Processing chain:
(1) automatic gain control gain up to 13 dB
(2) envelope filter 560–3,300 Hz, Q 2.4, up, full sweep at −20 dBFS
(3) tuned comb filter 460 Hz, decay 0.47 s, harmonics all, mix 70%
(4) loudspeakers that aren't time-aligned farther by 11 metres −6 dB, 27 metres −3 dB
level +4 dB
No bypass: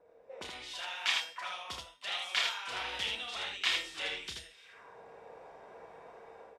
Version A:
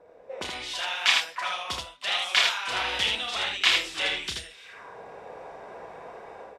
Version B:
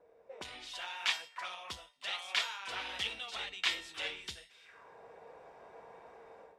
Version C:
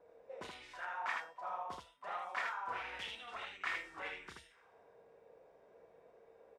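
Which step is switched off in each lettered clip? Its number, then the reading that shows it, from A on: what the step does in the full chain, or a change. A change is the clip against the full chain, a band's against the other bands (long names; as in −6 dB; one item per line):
3, change in integrated loudness +9.5 LU
4, echo-to-direct ratio −1.0 dB to none audible
1, change in momentary loudness spread −11 LU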